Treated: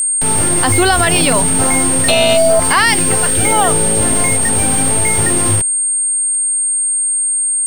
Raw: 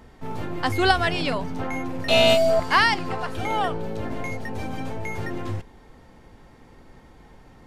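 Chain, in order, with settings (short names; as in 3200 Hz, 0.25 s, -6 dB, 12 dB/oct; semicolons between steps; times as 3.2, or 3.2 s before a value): requantised 6-bit, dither none; spectral gain 2.85–3.52, 630–1400 Hz -6 dB; whine 8600 Hz -25 dBFS; maximiser +13.5 dB; gain -1 dB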